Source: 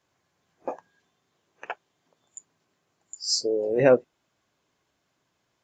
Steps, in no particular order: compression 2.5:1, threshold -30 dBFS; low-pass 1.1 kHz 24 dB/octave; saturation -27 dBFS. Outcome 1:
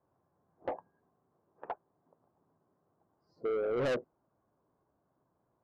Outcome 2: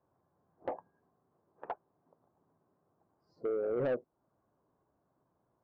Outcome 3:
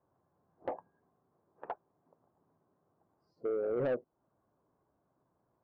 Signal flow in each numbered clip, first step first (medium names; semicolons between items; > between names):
low-pass > saturation > compression; low-pass > compression > saturation; compression > low-pass > saturation